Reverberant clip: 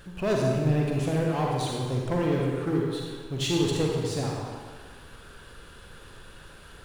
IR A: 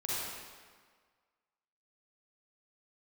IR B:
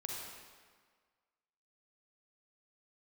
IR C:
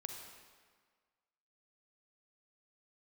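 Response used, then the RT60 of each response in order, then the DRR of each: B; 1.6, 1.6, 1.6 s; -8.0, -2.0, 3.0 dB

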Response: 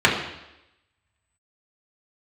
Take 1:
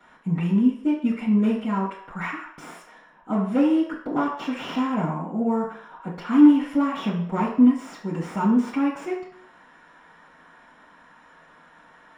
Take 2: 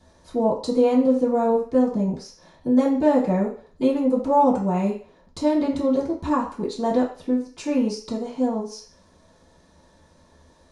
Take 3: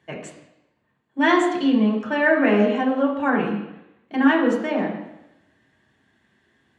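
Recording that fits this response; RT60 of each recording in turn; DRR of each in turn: 3; 0.60, 0.40, 0.90 s; -11.0, -10.0, -4.5 dB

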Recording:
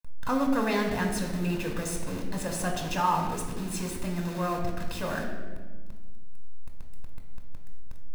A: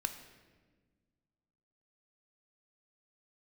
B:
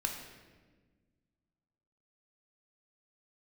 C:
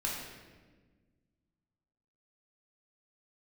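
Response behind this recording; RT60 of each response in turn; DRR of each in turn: B; 1.4, 1.4, 1.4 s; 7.5, 2.0, -4.0 dB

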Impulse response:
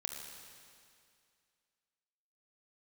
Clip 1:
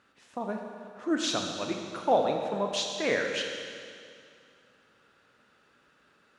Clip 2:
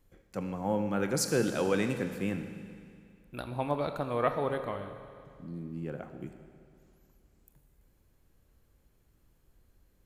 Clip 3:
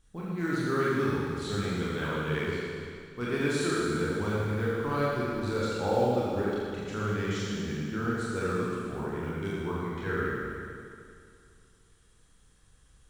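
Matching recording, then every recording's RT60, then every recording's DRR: 1; 2.3, 2.3, 2.3 s; 2.0, 7.0, -7.5 dB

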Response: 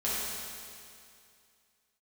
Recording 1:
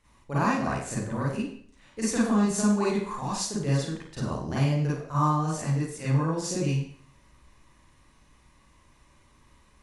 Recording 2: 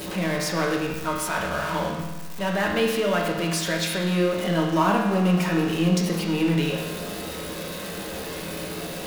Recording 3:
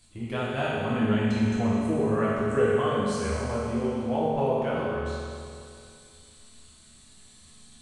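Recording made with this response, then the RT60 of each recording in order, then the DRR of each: 3; 0.55, 1.2, 2.4 s; -8.5, -1.0, -9.5 dB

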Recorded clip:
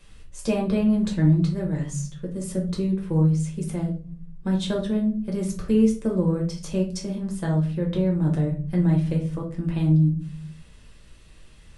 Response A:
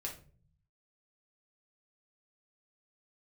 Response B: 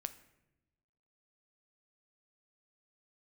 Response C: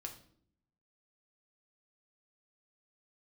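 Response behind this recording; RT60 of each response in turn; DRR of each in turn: A; 0.45, 0.95, 0.60 s; -1.5, 10.0, 2.5 dB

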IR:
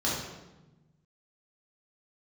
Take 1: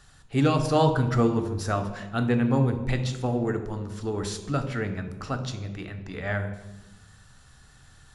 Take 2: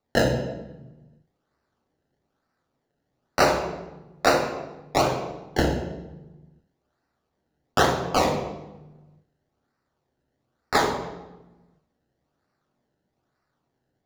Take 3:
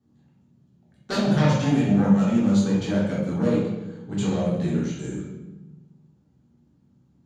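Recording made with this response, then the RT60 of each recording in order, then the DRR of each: 3; 1.1, 1.1, 1.1 s; 7.5, 2.5, -6.5 dB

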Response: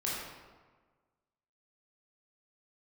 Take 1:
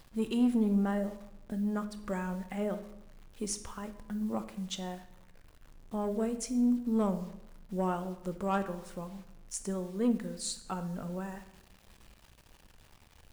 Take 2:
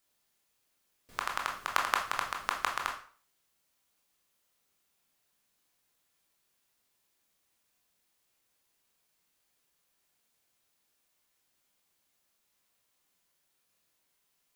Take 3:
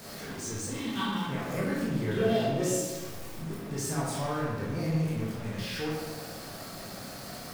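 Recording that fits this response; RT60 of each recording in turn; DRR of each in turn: 3; 0.85, 0.45, 1.4 s; 9.0, 0.5, -6.5 dB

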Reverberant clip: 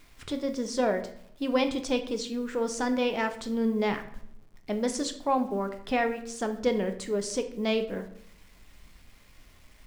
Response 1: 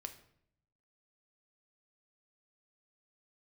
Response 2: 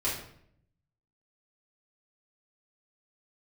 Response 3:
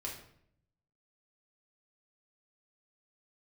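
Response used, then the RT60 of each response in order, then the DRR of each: 1; 0.65, 0.65, 0.65 s; 6.5, -10.0, -3.5 dB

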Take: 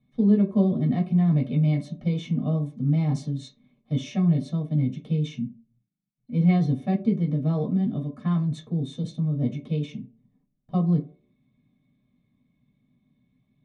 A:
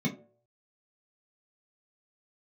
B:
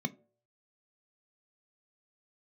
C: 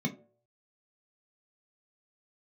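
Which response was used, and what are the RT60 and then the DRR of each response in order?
A; 0.55, 0.55, 0.55 s; -3.5, 10.0, 1.5 dB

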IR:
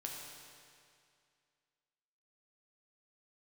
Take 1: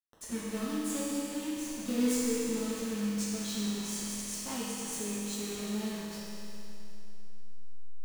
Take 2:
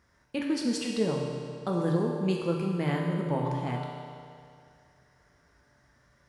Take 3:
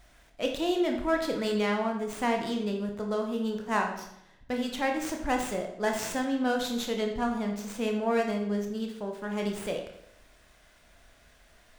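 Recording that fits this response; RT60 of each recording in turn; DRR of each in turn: 2; 3.0, 2.3, 0.75 s; -8.5, -1.5, 2.0 dB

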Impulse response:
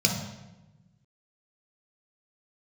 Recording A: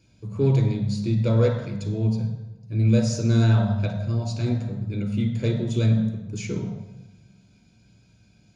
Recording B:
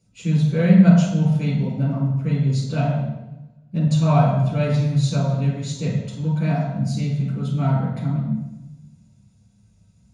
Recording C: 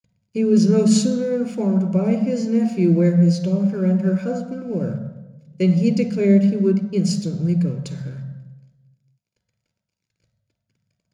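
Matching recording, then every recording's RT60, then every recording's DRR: A; 1.0, 1.0, 1.0 s; 1.0, -7.5, 6.0 dB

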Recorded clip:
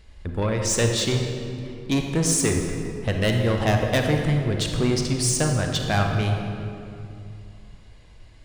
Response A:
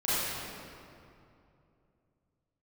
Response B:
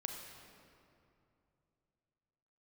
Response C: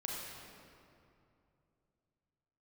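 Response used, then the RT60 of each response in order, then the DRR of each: B; 2.7, 2.7, 2.7 s; -13.0, 2.5, -3.5 dB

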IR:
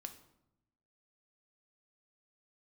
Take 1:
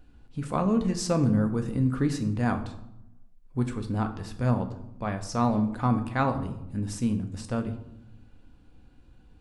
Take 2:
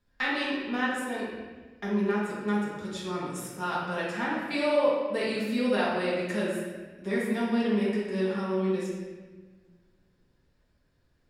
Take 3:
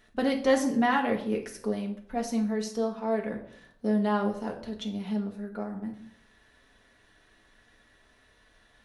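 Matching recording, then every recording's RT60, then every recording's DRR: 1; 0.85, 1.4, 0.65 s; 6.5, -7.5, 0.0 dB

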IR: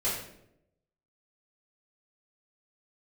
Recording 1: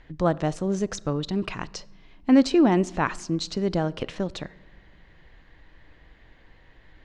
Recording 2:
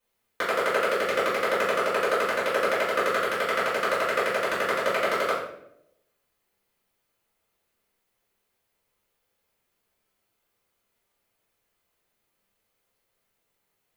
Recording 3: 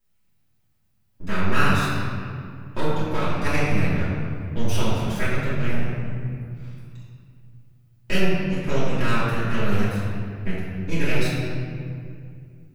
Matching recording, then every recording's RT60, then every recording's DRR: 2; not exponential, 0.80 s, 2.3 s; 20.0, -10.0, -13.5 dB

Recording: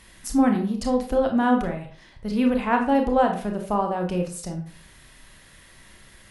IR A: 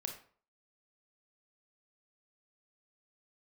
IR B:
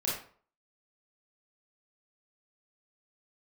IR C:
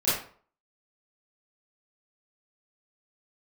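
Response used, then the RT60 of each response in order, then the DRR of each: A; 0.45, 0.45, 0.45 s; 3.0, -6.5, -13.5 dB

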